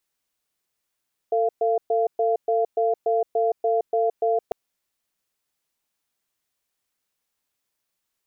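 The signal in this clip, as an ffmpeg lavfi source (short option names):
-f lavfi -i "aevalsrc='0.0891*(sin(2*PI*450*t)+sin(2*PI*689*t))*clip(min(mod(t,0.29),0.17-mod(t,0.29))/0.005,0,1)':d=3.2:s=44100"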